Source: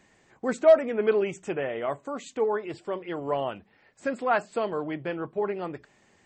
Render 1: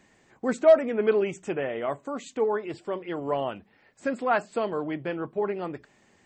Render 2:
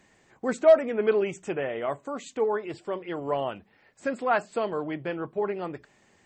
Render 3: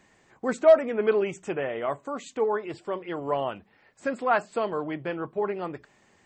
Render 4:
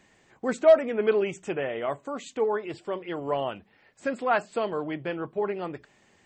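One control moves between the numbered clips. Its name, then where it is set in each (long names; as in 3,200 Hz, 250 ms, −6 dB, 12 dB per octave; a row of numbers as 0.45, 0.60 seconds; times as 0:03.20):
parametric band, centre frequency: 250, 15,000, 1,100, 3,100 Hertz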